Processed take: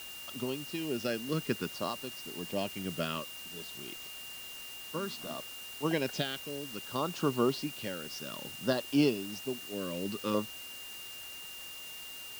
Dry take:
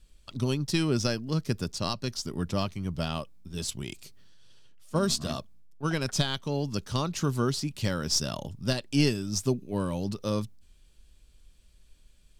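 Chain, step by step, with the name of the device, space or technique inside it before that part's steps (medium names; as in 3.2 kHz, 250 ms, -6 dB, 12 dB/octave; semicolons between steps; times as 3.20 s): shortwave radio (band-pass 280–2800 Hz; tremolo 0.68 Hz, depth 69%; LFO notch saw down 0.58 Hz 590–2600 Hz; whistle 2.8 kHz -48 dBFS; white noise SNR 12 dB); trim +3 dB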